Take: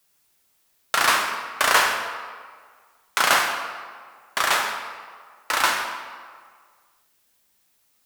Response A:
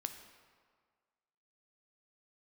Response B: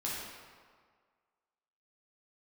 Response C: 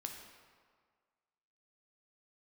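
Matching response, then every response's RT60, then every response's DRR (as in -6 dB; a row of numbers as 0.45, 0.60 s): C; 1.8, 1.8, 1.8 s; 7.0, -6.5, 2.5 dB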